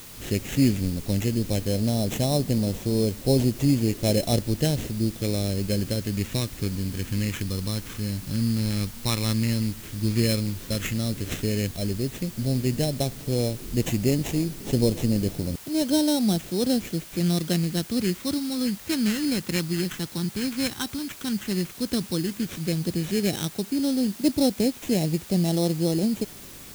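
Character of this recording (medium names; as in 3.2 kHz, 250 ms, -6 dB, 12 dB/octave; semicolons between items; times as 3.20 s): aliases and images of a low sample rate 4.7 kHz, jitter 0%; phasing stages 2, 0.087 Hz, lowest notch 630–1300 Hz; a quantiser's noise floor 8-bit, dither triangular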